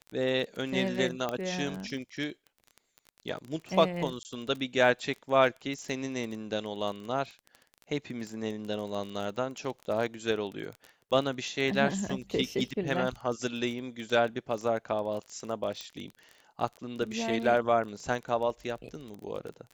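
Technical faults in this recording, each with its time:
crackle 22/s -35 dBFS
1.29 pop -18 dBFS
4.23–4.25 gap 19 ms
15.81 pop -23 dBFS

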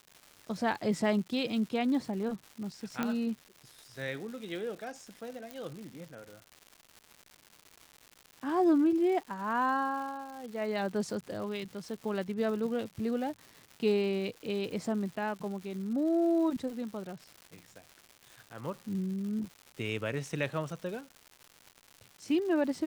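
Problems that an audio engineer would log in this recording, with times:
crackle 290/s -41 dBFS
3.03 pop -17 dBFS
5.51 pop

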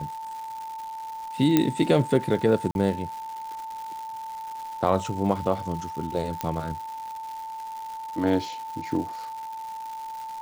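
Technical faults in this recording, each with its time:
crackle 350/s -35 dBFS
tone 890 Hz -33 dBFS
1.57 pop -6 dBFS
2.71–2.75 gap 41 ms
6.41 pop -12 dBFS

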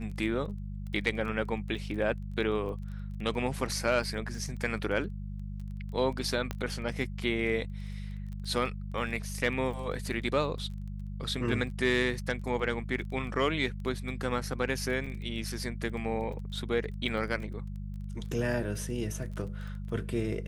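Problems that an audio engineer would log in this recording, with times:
crackle 17/s -39 dBFS
hum 50 Hz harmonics 4 -38 dBFS
1.75 gap 3.2 ms
6.51 pop -18 dBFS
15.06–15.07 gap 5.3 ms

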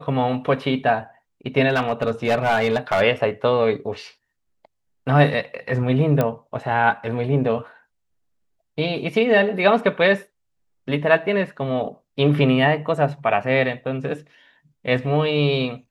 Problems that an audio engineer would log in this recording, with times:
1.69–3.02 clipped -14 dBFS
6.21 pop -8 dBFS

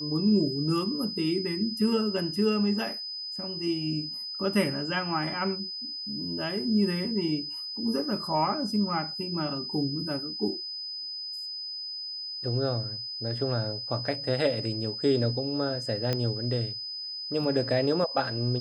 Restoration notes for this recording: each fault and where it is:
tone 5000 Hz -34 dBFS
16.13 pop -14 dBFS

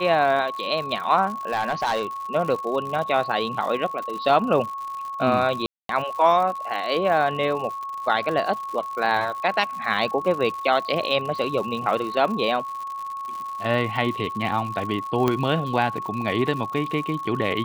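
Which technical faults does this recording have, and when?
crackle 130/s -31 dBFS
tone 1100 Hz -29 dBFS
1.52–2.03 clipped -18 dBFS
5.66–5.89 gap 0.233 s
15.28 pop -8 dBFS

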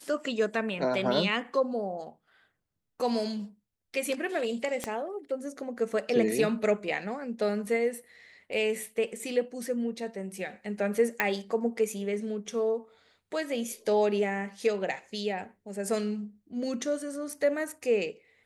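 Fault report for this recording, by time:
4.84 pop -16 dBFS
11.2 pop -11 dBFS

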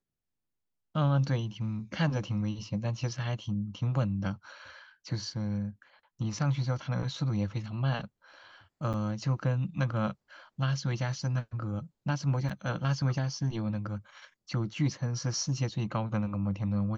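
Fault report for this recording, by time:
8.93–8.94 gap 8.2 ms
12.49–12.5 gap 6 ms

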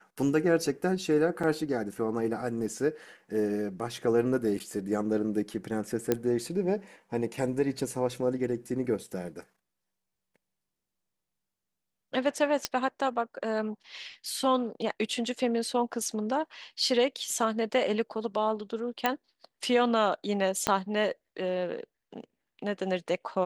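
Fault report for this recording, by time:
1.43 gap 4.7 ms
6.12 pop -11 dBFS
12.65 pop -11 dBFS
19.06 pop -11 dBFS
20.67 pop -10 dBFS

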